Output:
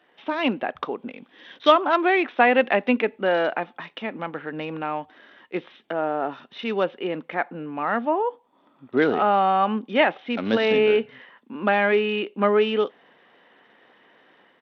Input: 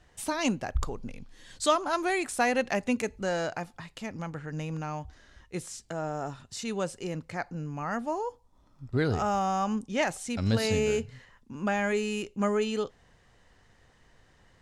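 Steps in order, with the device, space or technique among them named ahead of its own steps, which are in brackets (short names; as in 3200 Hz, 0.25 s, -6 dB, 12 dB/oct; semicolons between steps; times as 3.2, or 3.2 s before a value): Bluetooth headset (HPF 240 Hz 24 dB/oct; AGC gain up to 5.5 dB; downsampling 8000 Hz; gain +3.5 dB; SBC 64 kbps 32000 Hz)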